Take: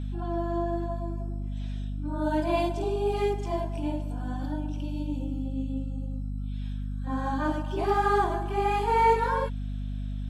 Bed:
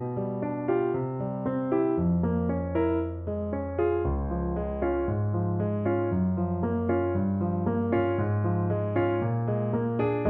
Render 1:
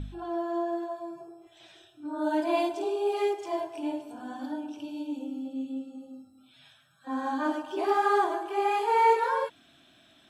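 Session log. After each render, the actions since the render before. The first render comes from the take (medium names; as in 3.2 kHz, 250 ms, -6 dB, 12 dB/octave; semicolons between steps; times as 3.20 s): de-hum 50 Hz, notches 5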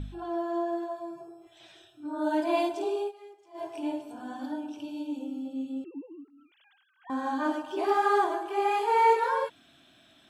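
3.00–3.66 s: dip -21.5 dB, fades 0.12 s; 5.84–7.10 s: formants replaced by sine waves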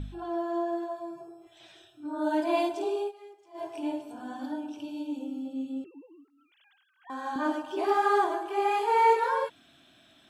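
5.86–7.36 s: high-pass 750 Hz 6 dB/octave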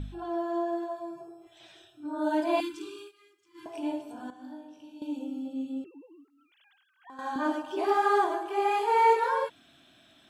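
2.60–3.66 s: Chebyshev band-stop 320–1200 Hz, order 3; 4.30–5.02 s: feedback comb 51 Hz, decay 0.83 s, mix 90%; 5.93–7.19 s: compression, threshold -44 dBFS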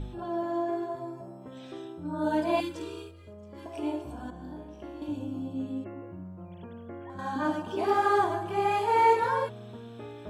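add bed -16.5 dB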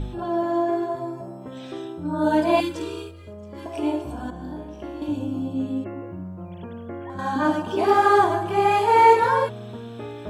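trim +7.5 dB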